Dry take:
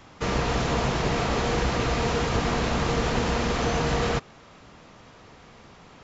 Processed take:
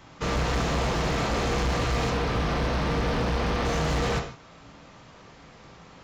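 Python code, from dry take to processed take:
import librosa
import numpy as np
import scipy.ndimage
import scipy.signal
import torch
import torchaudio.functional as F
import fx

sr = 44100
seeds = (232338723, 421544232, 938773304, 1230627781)

y = fx.delta_mod(x, sr, bps=32000, step_db=-37.5, at=(2.1, 3.65))
y = fx.rev_gated(y, sr, seeds[0], gate_ms=190, shape='falling', drr_db=3.0)
y = np.clip(y, -10.0 ** (-20.0 / 20.0), 10.0 ** (-20.0 / 20.0))
y = F.gain(torch.from_numpy(y), -1.5).numpy()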